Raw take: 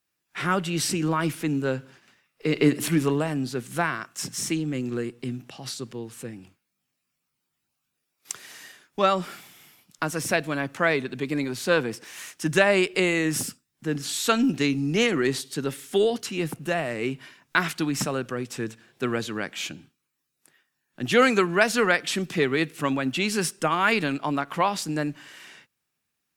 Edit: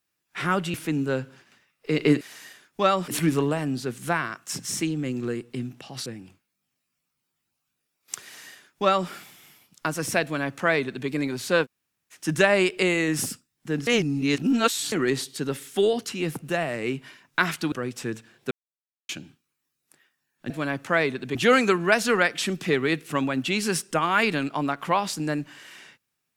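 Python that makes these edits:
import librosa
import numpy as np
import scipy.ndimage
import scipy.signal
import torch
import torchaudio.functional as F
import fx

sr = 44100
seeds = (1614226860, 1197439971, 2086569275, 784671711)

y = fx.edit(x, sr, fx.cut(start_s=0.74, length_s=0.56),
    fx.cut(start_s=5.75, length_s=0.48),
    fx.duplicate(start_s=8.4, length_s=0.87, to_s=2.77),
    fx.duplicate(start_s=10.4, length_s=0.85, to_s=21.04),
    fx.room_tone_fill(start_s=11.81, length_s=0.49, crossfade_s=0.06),
    fx.reverse_span(start_s=14.04, length_s=1.05),
    fx.cut(start_s=17.89, length_s=0.37),
    fx.silence(start_s=19.05, length_s=0.58), tone=tone)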